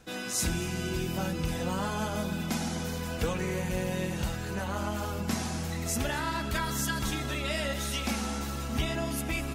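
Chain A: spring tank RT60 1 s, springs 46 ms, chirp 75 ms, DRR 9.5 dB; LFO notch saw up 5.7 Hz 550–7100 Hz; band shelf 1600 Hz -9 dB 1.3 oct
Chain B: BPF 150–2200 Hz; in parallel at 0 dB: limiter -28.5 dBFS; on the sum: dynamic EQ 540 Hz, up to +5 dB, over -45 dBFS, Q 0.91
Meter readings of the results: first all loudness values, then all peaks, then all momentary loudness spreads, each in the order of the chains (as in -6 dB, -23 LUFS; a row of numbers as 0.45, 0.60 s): -33.0, -27.5 LUFS; -16.0, -14.5 dBFS; 3, 3 LU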